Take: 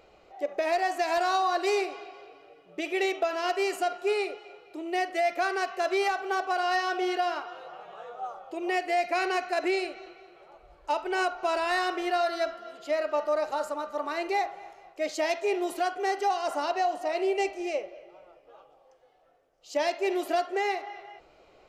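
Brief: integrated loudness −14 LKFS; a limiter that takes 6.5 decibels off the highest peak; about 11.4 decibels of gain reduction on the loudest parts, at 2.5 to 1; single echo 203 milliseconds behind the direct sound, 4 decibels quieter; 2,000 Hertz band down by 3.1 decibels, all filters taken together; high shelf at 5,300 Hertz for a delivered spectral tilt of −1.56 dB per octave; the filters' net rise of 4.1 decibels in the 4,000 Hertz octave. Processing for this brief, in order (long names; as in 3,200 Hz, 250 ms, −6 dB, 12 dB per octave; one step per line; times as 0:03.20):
parametric band 2,000 Hz −6 dB
parametric band 4,000 Hz +5 dB
high-shelf EQ 5,300 Hz +4.5 dB
downward compressor 2.5 to 1, threshold −41 dBFS
brickwall limiter −33 dBFS
single-tap delay 203 ms −4 dB
level +27 dB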